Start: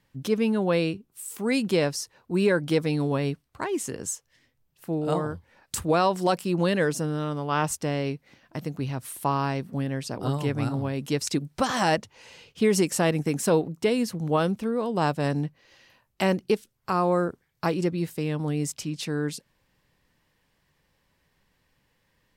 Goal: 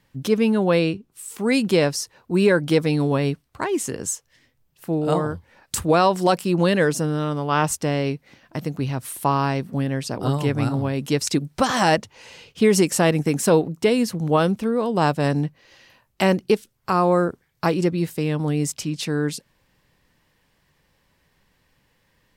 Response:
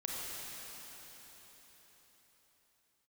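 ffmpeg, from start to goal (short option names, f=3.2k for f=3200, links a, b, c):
-filter_complex "[0:a]asettb=1/sr,asplit=3[a][b][c];[a]atrim=end=0.794[d];[b]atrim=start=0.79:end=1.41,asetpts=PTS-STARTPTS,afade=t=in:d=0.004:c=qsin,afade=t=out:st=0.616:d=0.004:c=qsin,highshelf=f=11k:g=-10.5[e];[c]atrim=start=1.406[f];[d][e]acrossfade=d=0.004:c1=hsin:c2=qsin[g];[g][f]acrossfade=d=0.004:c1=qsin:c2=hsin,volume=5dB"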